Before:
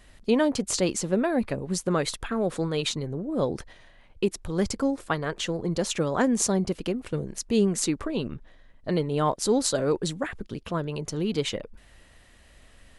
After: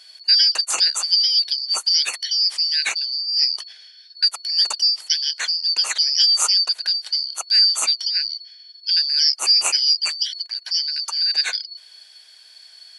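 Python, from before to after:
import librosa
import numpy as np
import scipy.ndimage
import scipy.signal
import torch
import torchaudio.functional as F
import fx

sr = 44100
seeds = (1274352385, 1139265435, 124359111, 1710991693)

y = fx.band_shuffle(x, sr, order='4321')
y = scipy.signal.sosfilt(scipy.signal.butter(2, 680.0, 'highpass', fs=sr, output='sos'), y)
y = y * 10.0 ** (6.5 / 20.0)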